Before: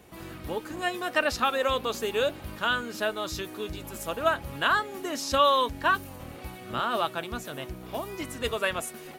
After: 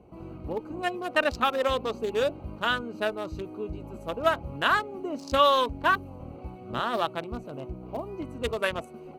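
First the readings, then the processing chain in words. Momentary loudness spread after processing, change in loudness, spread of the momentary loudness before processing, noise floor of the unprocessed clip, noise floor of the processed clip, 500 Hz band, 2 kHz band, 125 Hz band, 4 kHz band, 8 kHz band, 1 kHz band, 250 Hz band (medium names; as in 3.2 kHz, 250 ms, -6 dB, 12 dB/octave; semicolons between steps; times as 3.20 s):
14 LU, 0.0 dB, 12 LU, -44 dBFS, -45 dBFS, +1.0 dB, -0.5 dB, +1.5 dB, -1.5 dB, -9.5 dB, 0.0 dB, +1.0 dB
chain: local Wiener filter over 25 samples; trim +1.5 dB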